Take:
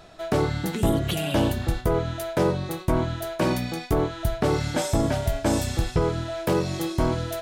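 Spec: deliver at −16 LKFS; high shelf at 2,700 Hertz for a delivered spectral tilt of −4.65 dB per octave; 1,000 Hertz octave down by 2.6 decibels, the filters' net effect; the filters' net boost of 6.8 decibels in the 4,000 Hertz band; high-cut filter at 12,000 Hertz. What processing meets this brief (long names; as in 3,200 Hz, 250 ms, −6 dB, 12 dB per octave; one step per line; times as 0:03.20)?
low-pass filter 12,000 Hz
parametric band 1,000 Hz −4.5 dB
high-shelf EQ 2,700 Hz +6.5 dB
parametric band 4,000 Hz +3.5 dB
level +9 dB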